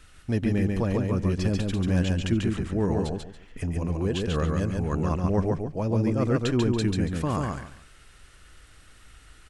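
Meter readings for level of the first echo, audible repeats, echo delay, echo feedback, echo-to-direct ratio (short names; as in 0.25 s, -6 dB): -3.0 dB, 3, 0.141 s, 24%, -2.5 dB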